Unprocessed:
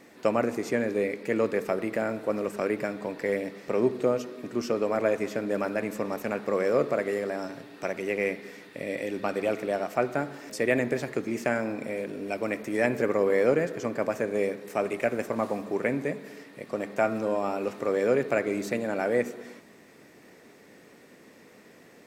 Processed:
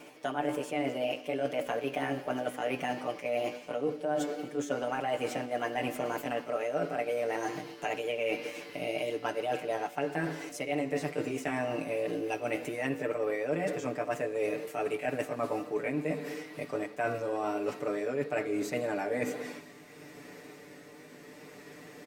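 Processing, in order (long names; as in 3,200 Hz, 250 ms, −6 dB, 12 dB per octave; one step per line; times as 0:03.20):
pitch glide at a constant tempo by +4 semitones ending unshifted
comb filter 6.8 ms, depth 95%
reversed playback
downward compressor 6 to 1, threshold −31 dBFS, peak gain reduction 16 dB
reversed playback
tape wow and flutter 26 cents
on a send: four-pole ladder band-pass 4,200 Hz, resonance 30% + convolution reverb RT60 2.1 s, pre-delay 38 ms, DRR 21 dB
on the sum: level +2 dB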